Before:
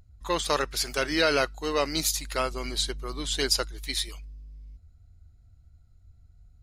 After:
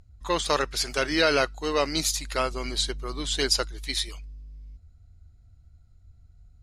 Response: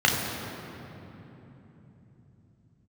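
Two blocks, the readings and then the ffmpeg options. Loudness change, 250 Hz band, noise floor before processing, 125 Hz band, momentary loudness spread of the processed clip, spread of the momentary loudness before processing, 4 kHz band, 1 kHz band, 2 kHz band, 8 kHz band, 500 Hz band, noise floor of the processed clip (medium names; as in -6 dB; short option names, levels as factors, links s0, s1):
+1.5 dB, +1.5 dB, -57 dBFS, +1.5 dB, 7 LU, 7 LU, +1.5 dB, +1.5 dB, +1.5 dB, +0.5 dB, +1.5 dB, -56 dBFS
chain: -af "lowpass=10000,volume=1.19"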